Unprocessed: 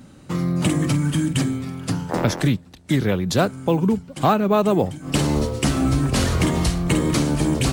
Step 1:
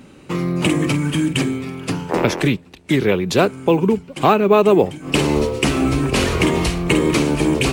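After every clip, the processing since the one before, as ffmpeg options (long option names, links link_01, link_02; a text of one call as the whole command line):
ffmpeg -i in.wav -af "equalizer=frequency=100:width_type=o:width=0.67:gain=-4,equalizer=frequency=400:width_type=o:width=0.67:gain=9,equalizer=frequency=1000:width_type=o:width=0.67:gain=4,equalizer=frequency=2500:width_type=o:width=0.67:gain=10" out.wav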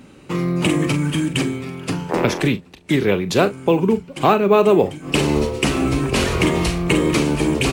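ffmpeg -i in.wav -filter_complex "[0:a]asplit=2[link_01][link_02];[link_02]adelay=40,volume=-13dB[link_03];[link_01][link_03]amix=inputs=2:normalize=0,volume=-1dB" out.wav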